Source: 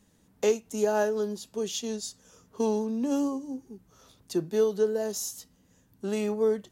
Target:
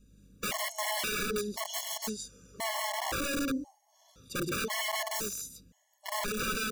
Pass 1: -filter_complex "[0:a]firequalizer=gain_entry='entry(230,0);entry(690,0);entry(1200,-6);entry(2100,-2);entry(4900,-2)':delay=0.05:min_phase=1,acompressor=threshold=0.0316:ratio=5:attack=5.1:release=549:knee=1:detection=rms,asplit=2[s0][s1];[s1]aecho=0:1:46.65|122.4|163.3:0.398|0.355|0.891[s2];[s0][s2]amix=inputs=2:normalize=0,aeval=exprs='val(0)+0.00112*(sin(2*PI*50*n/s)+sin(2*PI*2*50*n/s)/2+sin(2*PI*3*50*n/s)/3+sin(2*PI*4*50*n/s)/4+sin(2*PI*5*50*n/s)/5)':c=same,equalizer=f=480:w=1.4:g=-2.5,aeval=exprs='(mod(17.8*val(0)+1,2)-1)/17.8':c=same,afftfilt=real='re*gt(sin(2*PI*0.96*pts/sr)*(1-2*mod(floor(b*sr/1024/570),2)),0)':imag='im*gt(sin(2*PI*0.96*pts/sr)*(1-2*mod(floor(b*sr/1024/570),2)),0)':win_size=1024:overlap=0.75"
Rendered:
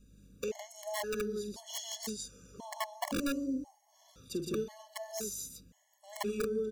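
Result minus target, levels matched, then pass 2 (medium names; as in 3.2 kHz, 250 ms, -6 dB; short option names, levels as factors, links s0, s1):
compression: peak gain reduction +11.5 dB
-filter_complex "[0:a]firequalizer=gain_entry='entry(230,0);entry(690,0);entry(1200,-6);entry(2100,-2);entry(4900,-2)':delay=0.05:min_phase=1,asplit=2[s0][s1];[s1]aecho=0:1:46.65|122.4|163.3:0.398|0.355|0.891[s2];[s0][s2]amix=inputs=2:normalize=0,aeval=exprs='val(0)+0.00112*(sin(2*PI*50*n/s)+sin(2*PI*2*50*n/s)/2+sin(2*PI*3*50*n/s)/3+sin(2*PI*4*50*n/s)/4+sin(2*PI*5*50*n/s)/5)':c=same,equalizer=f=480:w=1.4:g=-2.5,aeval=exprs='(mod(17.8*val(0)+1,2)-1)/17.8':c=same,afftfilt=real='re*gt(sin(2*PI*0.96*pts/sr)*(1-2*mod(floor(b*sr/1024/570),2)),0)':imag='im*gt(sin(2*PI*0.96*pts/sr)*(1-2*mod(floor(b*sr/1024/570),2)),0)':win_size=1024:overlap=0.75"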